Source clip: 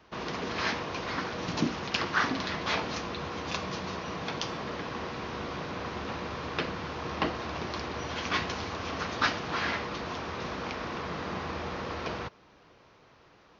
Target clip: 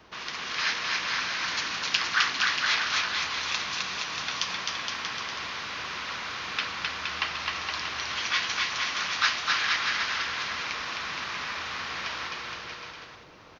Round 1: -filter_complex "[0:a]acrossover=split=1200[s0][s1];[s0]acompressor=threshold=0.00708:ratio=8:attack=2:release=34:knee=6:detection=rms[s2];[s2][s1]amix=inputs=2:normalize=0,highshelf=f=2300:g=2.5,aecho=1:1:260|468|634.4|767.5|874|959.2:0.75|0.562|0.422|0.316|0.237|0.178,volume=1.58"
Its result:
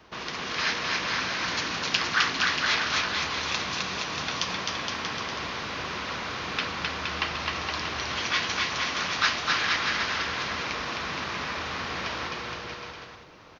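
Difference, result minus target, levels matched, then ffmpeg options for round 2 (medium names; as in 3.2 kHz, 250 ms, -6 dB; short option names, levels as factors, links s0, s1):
compression: peak gain reduction -9 dB
-filter_complex "[0:a]acrossover=split=1200[s0][s1];[s0]acompressor=threshold=0.00211:ratio=8:attack=2:release=34:knee=6:detection=rms[s2];[s2][s1]amix=inputs=2:normalize=0,highshelf=f=2300:g=2.5,aecho=1:1:260|468|634.4|767.5|874|959.2:0.75|0.562|0.422|0.316|0.237|0.178,volume=1.58"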